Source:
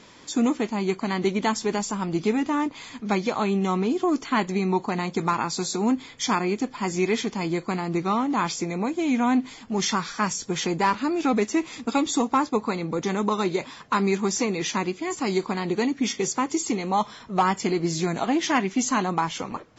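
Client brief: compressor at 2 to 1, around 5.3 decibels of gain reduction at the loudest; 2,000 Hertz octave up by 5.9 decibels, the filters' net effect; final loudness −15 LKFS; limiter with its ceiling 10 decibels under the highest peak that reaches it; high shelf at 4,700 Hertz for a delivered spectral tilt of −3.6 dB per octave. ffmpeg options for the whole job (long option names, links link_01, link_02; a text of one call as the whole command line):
ffmpeg -i in.wav -af "equalizer=frequency=2000:width_type=o:gain=5.5,highshelf=frequency=4700:gain=9,acompressor=threshold=-26dB:ratio=2,volume=16dB,alimiter=limit=-6.5dB:level=0:latency=1" out.wav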